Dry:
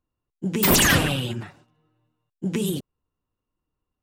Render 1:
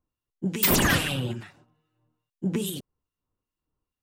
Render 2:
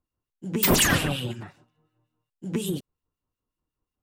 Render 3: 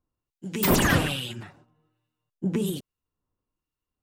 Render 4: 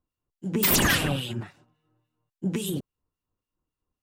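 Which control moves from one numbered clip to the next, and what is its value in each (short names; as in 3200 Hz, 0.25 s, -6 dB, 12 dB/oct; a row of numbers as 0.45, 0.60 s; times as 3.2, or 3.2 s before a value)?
harmonic tremolo, rate: 2.4, 5.5, 1.2, 3.6 Hz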